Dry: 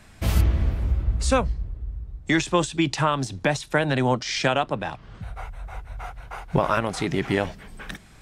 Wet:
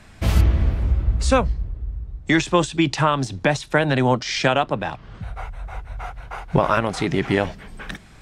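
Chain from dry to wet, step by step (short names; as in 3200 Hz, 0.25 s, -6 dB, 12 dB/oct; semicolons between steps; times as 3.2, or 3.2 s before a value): high shelf 9400 Hz -9 dB; gain +3.5 dB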